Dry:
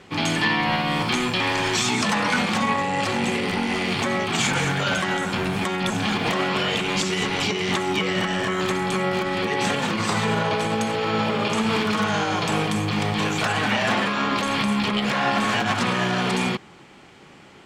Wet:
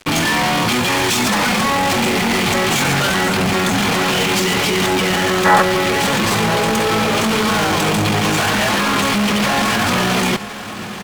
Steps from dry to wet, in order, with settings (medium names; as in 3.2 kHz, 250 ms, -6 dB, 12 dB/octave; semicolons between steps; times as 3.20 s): high-pass 50 Hz 6 dB/octave; fuzz box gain 35 dB, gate -41 dBFS; echo that smears into a reverb 1463 ms, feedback 60%, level -14 dB; time-frequency box 8.73–8.98 s, 470–2000 Hz +10 dB; tempo 1.6×; trim -1.5 dB